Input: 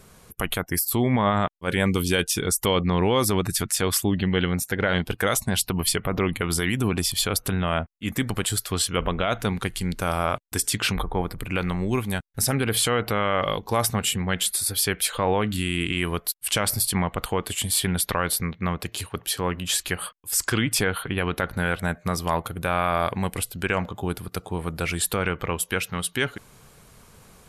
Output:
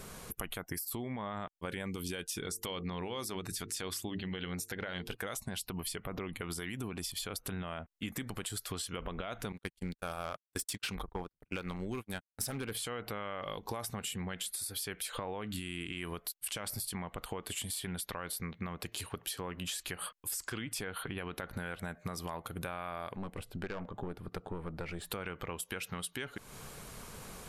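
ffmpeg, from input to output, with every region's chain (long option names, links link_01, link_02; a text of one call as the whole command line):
ffmpeg -i in.wav -filter_complex "[0:a]asettb=1/sr,asplit=3[link_01][link_02][link_03];[link_01]atrim=end=2.454[link_04];[link_02]atrim=start=2.45:end=5.15,asetpts=PTS-STARTPTS,afade=type=in:duration=0.004:curve=qsin,afade=type=out:start_time=2.696:duration=0.004:curve=qsin,equalizer=frequency=4800:width_type=o:width=1.9:gain=5.5,bandreject=frequency=50:width_type=h:width=6,bandreject=frequency=100:width_type=h:width=6,bandreject=frequency=150:width_type=h:width=6,bandreject=frequency=200:width_type=h:width=6,bandreject=frequency=250:width_type=h:width=6,bandreject=frequency=300:width_type=h:width=6,bandreject=frequency=350:width_type=h:width=6,bandreject=frequency=400:width_type=h:width=6,bandreject=frequency=450:width_type=h:width=6[link_05];[link_03]atrim=start=5.146[link_06];[link_04][link_05]acrossfade=duration=0.004:curve1=hsin:curve2=qsin[link_07];[link_07][link_06]acrossfade=duration=0.004:curve1=qsin:curve2=hsin,asettb=1/sr,asplit=3[link_08][link_09][link_10];[link_08]atrim=end=9.524[link_11];[link_09]atrim=start=9.52:end=12.75,asetpts=PTS-STARTPTS,afade=type=in:duration=0.004:curve=qsin,afade=type=out:start_time=3.226:duration=0.004:curve=qsin,asoftclip=type=hard:threshold=-17.5dB,agate=range=-51dB:threshold=-27dB:ratio=16:release=100:detection=peak[link_12];[link_10]atrim=start=12.746[link_13];[link_11][link_12]acrossfade=duration=0.004:curve1=hsin:curve2=qsin[link_14];[link_14][link_13]acrossfade=duration=0.004:curve1=qsin:curve2=hsin,asettb=1/sr,asplit=3[link_15][link_16][link_17];[link_15]atrim=end=23.164[link_18];[link_16]atrim=start=23.16:end=25.11,asetpts=PTS-STARTPTS,afade=type=in:duration=0.004:curve=qsin,afade=type=out:start_time=1.946:duration=0.004:curve=qsin,lowpass=frequency=1000:poles=1,aeval=exprs='(tanh(15.8*val(0)+0.65)-tanh(0.65))/15.8':channel_layout=same[link_19];[link_17]atrim=start=25.106[link_20];[link_18][link_19]acrossfade=duration=0.004:curve1=hsin:curve2=qsin[link_21];[link_21][link_20]acrossfade=duration=0.004:curve1=qsin:curve2=hsin,equalizer=frequency=88:width_type=o:width=1.6:gain=-4,alimiter=limit=-18dB:level=0:latency=1:release=151,acompressor=threshold=-41dB:ratio=6,volume=4dB" out.wav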